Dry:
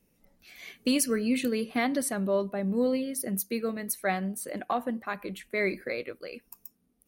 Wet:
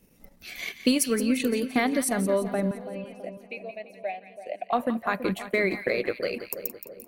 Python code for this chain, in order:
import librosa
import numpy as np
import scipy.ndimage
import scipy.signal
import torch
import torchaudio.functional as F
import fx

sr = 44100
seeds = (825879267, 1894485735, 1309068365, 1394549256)

p1 = fx.over_compress(x, sr, threshold_db=-36.0, ratio=-1.0)
p2 = x + F.gain(torch.from_numpy(p1), -1.0).numpy()
p3 = fx.double_bandpass(p2, sr, hz=1300.0, octaves=1.9, at=(2.71, 4.73))
p4 = fx.transient(p3, sr, attack_db=5, sustain_db=-9)
y = fx.echo_split(p4, sr, split_hz=940.0, low_ms=330, high_ms=172, feedback_pct=52, wet_db=-11.0)